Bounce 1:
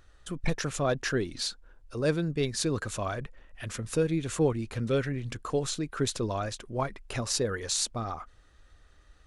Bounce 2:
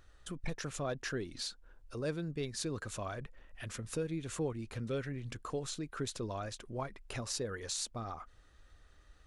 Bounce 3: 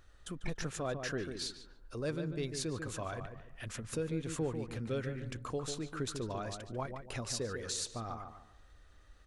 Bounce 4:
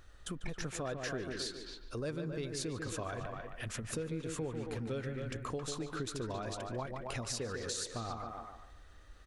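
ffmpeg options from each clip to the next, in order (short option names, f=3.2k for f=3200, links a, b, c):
-af "acompressor=threshold=-42dB:ratio=1.5,volume=-3dB"
-filter_complex "[0:a]asplit=2[a][b];[b]adelay=145,lowpass=f=1.8k:p=1,volume=-6.5dB,asplit=2[c][d];[d]adelay=145,lowpass=f=1.8k:p=1,volume=0.33,asplit=2[e][f];[f]adelay=145,lowpass=f=1.8k:p=1,volume=0.33,asplit=2[g][h];[h]adelay=145,lowpass=f=1.8k:p=1,volume=0.33[i];[a][c][e][g][i]amix=inputs=5:normalize=0"
-filter_complex "[0:a]asplit=2[a][b];[b]adelay=270,highpass=300,lowpass=3.4k,asoftclip=type=hard:threshold=-29dB,volume=-7dB[c];[a][c]amix=inputs=2:normalize=0,acompressor=threshold=-40dB:ratio=3,volume=3.5dB"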